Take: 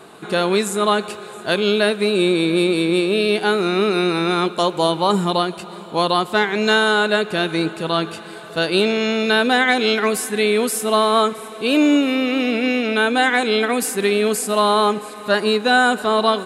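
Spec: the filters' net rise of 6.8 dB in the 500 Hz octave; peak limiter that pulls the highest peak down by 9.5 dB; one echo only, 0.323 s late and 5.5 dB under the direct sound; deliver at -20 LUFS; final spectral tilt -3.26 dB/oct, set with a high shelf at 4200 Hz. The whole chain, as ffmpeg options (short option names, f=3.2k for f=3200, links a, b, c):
-af "equalizer=f=500:t=o:g=8.5,highshelf=f=4.2k:g=8.5,alimiter=limit=-9.5dB:level=0:latency=1,aecho=1:1:323:0.531,volume=-2.5dB"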